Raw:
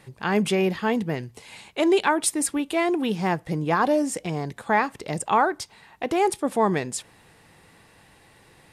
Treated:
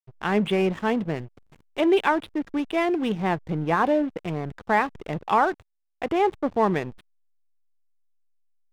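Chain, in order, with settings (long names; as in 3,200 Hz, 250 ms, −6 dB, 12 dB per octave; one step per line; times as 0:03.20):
downsampling to 8,000 Hz
slack as between gear wheels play −31.5 dBFS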